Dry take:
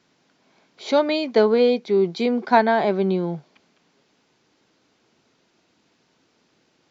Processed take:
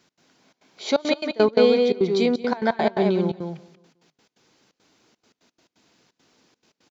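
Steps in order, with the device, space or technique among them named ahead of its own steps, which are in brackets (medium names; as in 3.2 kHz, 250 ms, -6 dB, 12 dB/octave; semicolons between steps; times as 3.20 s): treble shelf 6.2 kHz +8.5 dB; delay 187 ms -4.5 dB; trance gate with a delay (trance gate "x.xxxx.xxxx.x.x." 172 bpm -24 dB; feedback delay 183 ms, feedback 36%, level -20 dB)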